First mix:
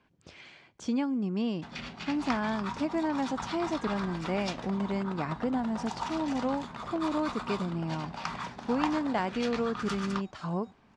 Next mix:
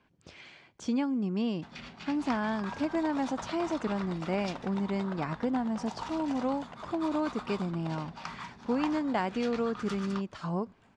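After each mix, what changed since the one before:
first sound −5.0 dB
second sound: entry −1.20 s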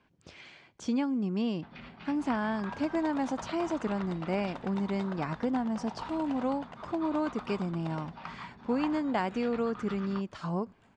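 first sound: add high-frequency loss of the air 300 metres

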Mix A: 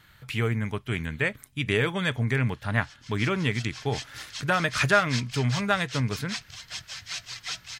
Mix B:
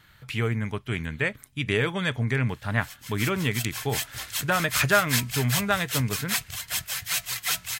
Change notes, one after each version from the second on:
background: remove transistor ladder low-pass 6,400 Hz, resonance 40%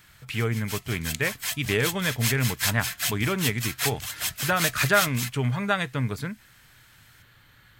background: entry −2.50 s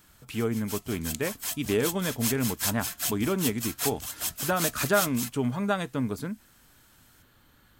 master: add octave-band graphic EQ 125/250/2,000/4,000 Hz −9/+6/−10/−4 dB

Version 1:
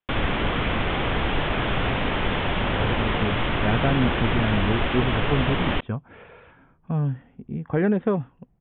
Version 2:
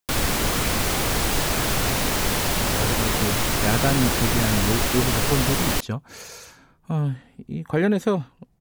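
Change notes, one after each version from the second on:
speech: remove high-frequency loss of the air 460 metres
master: remove Butterworth low-pass 3,500 Hz 96 dB per octave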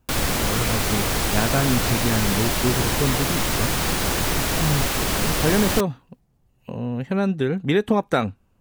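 speech: entry −2.30 s

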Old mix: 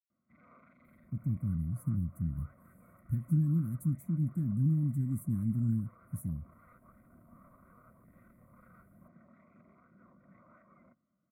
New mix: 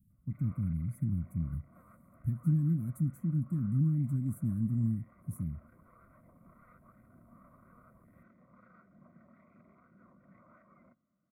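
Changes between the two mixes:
speech: entry −0.85 s
master: add high-shelf EQ 10,000 Hz −6 dB

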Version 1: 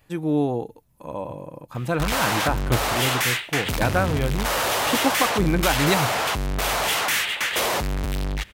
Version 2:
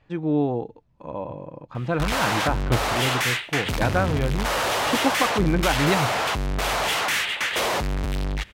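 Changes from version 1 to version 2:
speech: add high-frequency loss of the air 150 metres
master: add high-shelf EQ 9,700 Hz −10.5 dB

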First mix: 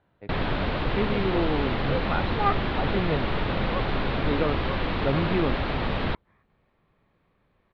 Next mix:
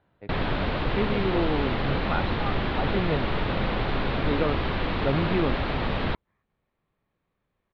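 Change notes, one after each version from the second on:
second sound −10.5 dB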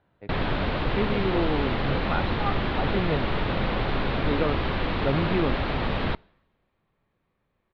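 reverb: on

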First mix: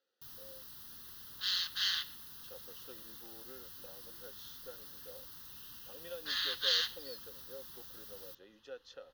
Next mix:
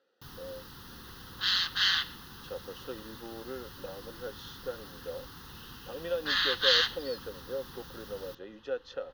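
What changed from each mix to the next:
master: remove first-order pre-emphasis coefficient 0.8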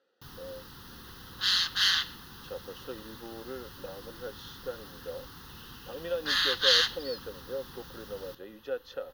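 second sound: remove low-pass filter 4,500 Hz 12 dB per octave

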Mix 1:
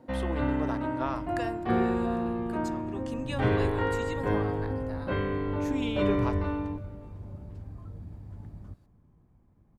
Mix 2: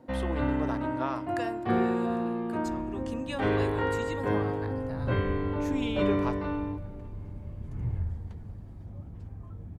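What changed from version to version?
second sound: entry +1.65 s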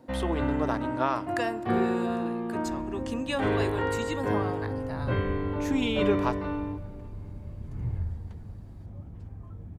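speech +6.0 dB

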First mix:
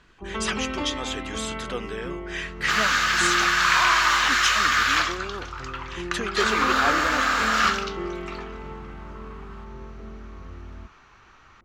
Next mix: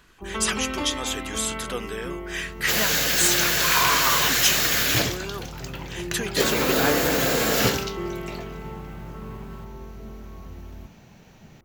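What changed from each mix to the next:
second sound: remove high-pass with resonance 1,200 Hz, resonance Q 5.3
master: remove high-frequency loss of the air 88 metres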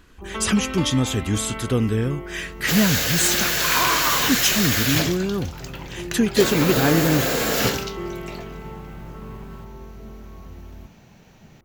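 speech: remove high-pass filter 640 Hz 12 dB per octave

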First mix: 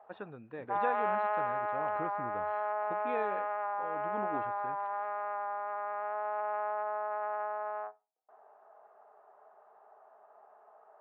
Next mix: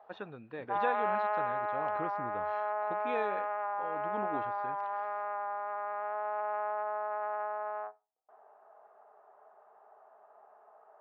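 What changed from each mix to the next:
speech: remove high-frequency loss of the air 320 metres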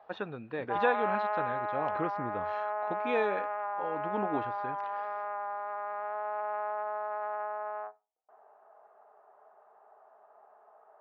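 speech +6.0 dB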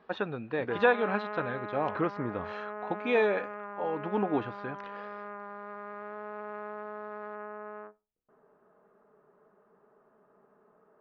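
speech +4.5 dB
background: remove high-pass with resonance 740 Hz, resonance Q 6.4

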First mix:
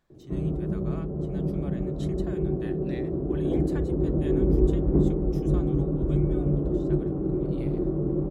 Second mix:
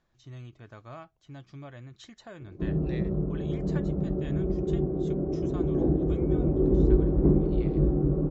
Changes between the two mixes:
background: entry +2.30 s
master: add Butterworth low-pass 7,300 Hz 96 dB per octave

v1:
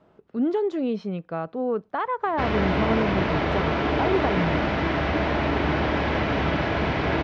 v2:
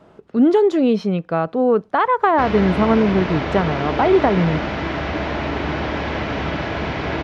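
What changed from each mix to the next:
speech +9.5 dB
master: remove high-frequency loss of the air 67 metres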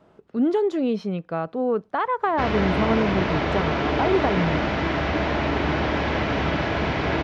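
speech −7.0 dB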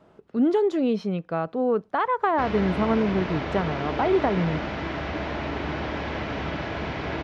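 background −6.5 dB

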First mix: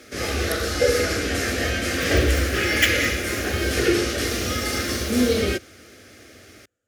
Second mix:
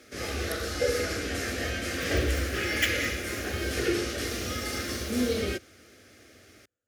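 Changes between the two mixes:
speech −9.0 dB
background −7.5 dB

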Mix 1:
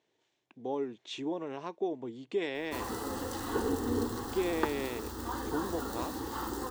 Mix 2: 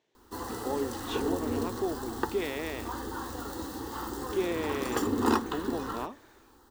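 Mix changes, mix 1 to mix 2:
background: entry −2.40 s
reverb: on, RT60 1.2 s

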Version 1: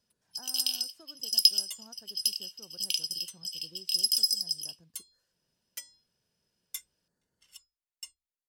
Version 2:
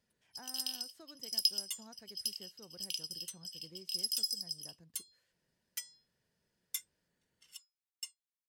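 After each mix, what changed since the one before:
speech: add flat-topped bell 2,700 Hz +15.5 dB 1.1 octaves
first sound −9.0 dB
second sound: add high-pass filter 1,000 Hz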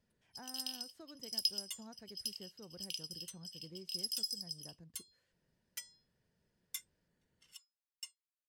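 master: add spectral tilt −1.5 dB per octave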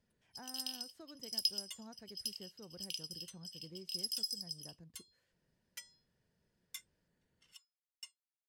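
second sound: add high-shelf EQ 6,300 Hz −8 dB

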